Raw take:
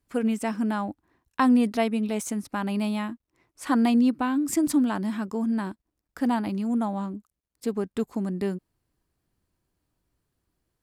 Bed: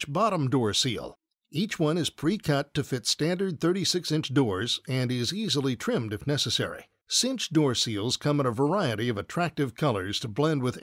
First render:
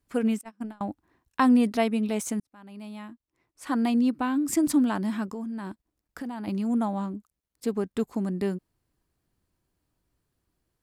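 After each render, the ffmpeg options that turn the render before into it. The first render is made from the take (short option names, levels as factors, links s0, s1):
-filter_complex "[0:a]asettb=1/sr,asplit=3[s0][s1][s2];[s0]atrim=end=0.414[s3];[s1]atrim=start=0.41:end=0.81,asetpts=PTS-STARTPTS,afade=t=in:d=0.004:c=qsin,afade=t=out:st=0.396:d=0.004:c=qsin,agate=range=0.02:threshold=0.0631:ratio=16:release=100:detection=peak[s4];[s2]atrim=start=0.806[s5];[s3][s4]acrossfade=d=0.004:c1=hsin:c2=qsin[s6];[s6][s5]acrossfade=d=0.004:c1=qsin:c2=hsin,asettb=1/sr,asplit=3[s7][s8][s9];[s7]atrim=end=5.314[s10];[s8]atrim=start=5.31:end=6.48,asetpts=PTS-STARTPTS,afade=t=in:d=0.004:c=qsin,afade=t=out:st=1.166:d=0.004:c=qsin,acompressor=threshold=0.0282:ratio=10:attack=3.2:release=140:knee=1:detection=peak[s11];[s9]atrim=start=6.476[s12];[s10][s11]acrossfade=d=0.004:c1=hsin:c2=qsin[s13];[s13][s12]acrossfade=d=0.004:c1=qsin:c2=hsin,asplit=2[s14][s15];[s14]atrim=end=2.4,asetpts=PTS-STARTPTS,afade=t=out:st=2.396:d=0.004:c=hsin[s16];[s15]atrim=start=2.4,asetpts=PTS-STARTPTS,afade=t=in:d=2.17[s17];[s16][s17]concat=n=2:v=0:a=1"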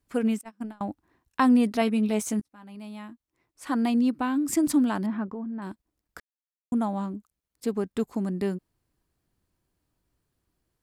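-filter_complex "[0:a]asettb=1/sr,asplit=3[s0][s1][s2];[s0]atrim=end=1.804[s3];[s1]atrim=start=1.8:end=2.75,asetpts=PTS-STARTPTS,afade=t=in:d=0.004:c=qsin,afade=t=out:st=0.946:d=0.004:c=qsin,asplit=2[s4][s5];[s5]adelay=14,volume=0.376[s6];[s4][s6]amix=inputs=2:normalize=0,atrim=end_sample=41895[s7];[s2]atrim=start=2.746[s8];[s3][s7]acrossfade=d=0.004:c1=hsin:c2=qsin[s9];[s9][s8]acrossfade=d=0.004:c1=qsin:c2=hsin,asettb=1/sr,asplit=3[s10][s11][s12];[s10]atrim=end=5.064[s13];[s11]atrim=start=5.06:end=5.62,asetpts=PTS-STARTPTS,afade=t=in:d=0.004:c=qsin,afade=t=out:st=0.556:d=0.004:c=qsin,lowpass=1600[s14];[s12]atrim=start=5.616[s15];[s13][s14]acrossfade=d=0.004:c1=hsin:c2=qsin[s16];[s16][s15]acrossfade=d=0.004:c1=qsin:c2=hsin,asplit=3[s17][s18][s19];[s17]atrim=end=6.2,asetpts=PTS-STARTPTS,afade=t=out:st=6.196:d=0.004:c=hsin[s20];[s18]atrim=start=6.2:end=6.72,asetpts=PTS-STARTPTS,volume=0[s21];[s19]atrim=start=6.72,asetpts=PTS-STARTPTS,afade=t=in:d=0.004:c=hsin[s22];[s20][s21][s22]concat=n=3:v=0:a=1"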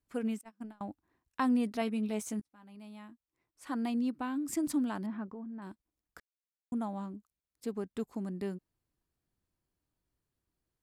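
-af "volume=0.355"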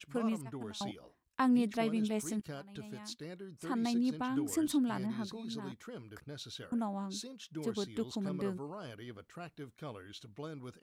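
-filter_complex "[1:a]volume=0.106[s0];[0:a][s0]amix=inputs=2:normalize=0"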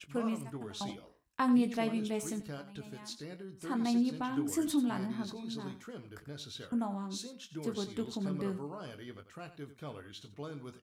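-filter_complex "[0:a]asplit=2[s0][s1];[s1]adelay=21,volume=0.355[s2];[s0][s2]amix=inputs=2:normalize=0,aecho=1:1:89:0.224"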